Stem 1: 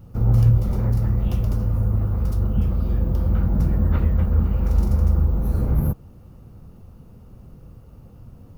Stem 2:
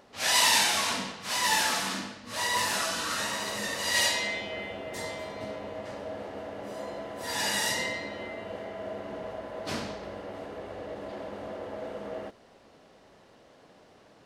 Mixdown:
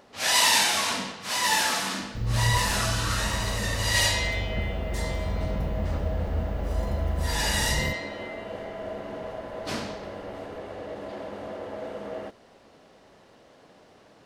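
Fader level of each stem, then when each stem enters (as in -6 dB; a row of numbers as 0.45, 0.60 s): -10.0, +2.0 dB; 2.00, 0.00 s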